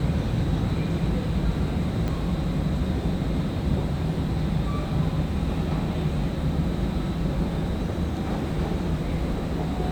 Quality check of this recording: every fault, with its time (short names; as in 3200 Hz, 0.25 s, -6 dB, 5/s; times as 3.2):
2.08 pop -17 dBFS